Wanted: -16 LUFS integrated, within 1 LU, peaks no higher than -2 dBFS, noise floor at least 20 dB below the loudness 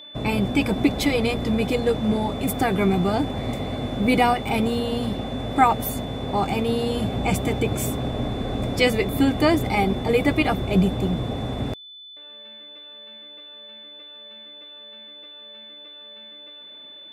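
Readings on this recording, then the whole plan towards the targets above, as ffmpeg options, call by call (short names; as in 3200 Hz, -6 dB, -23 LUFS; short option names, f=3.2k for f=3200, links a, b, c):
steady tone 3500 Hz; tone level -40 dBFS; loudness -23.0 LUFS; peak -4.5 dBFS; loudness target -16.0 LUFS
-> -af "bandreject=f=3.5k:w=30"
-af "volume=7dB,alimiter=limit=-2dB:level=0:latency=1"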